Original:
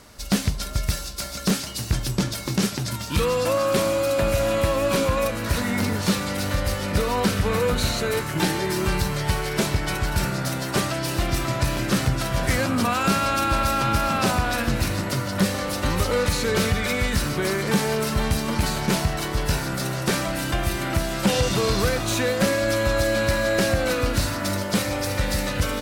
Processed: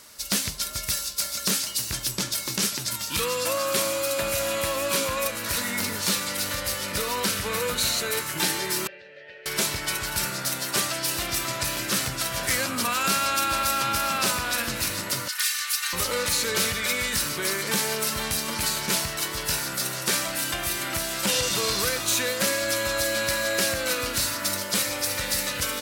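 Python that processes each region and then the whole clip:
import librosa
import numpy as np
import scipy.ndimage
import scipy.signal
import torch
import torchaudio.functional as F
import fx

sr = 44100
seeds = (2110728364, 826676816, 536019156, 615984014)

y = fx.chain(x, sr, fx.vowel_filter(vowel='e'),
    fx.air_absorb(metres=200.0), at=(8.87, 9.46))
y = fx.chain(y, sr, fx.cheby2_highpass(hz=400.0, order=4, stop_db=60),
    fx.comb(ms=3.3, depth=0.72), at=(15.28, 15.93))
y = fx.tilt_eq(y, sr, slope=3.0)
y = fx.notch(y, sr, hz=750.0, q=12.0)
y = y * librosa.db_to_amplitude(-3.5)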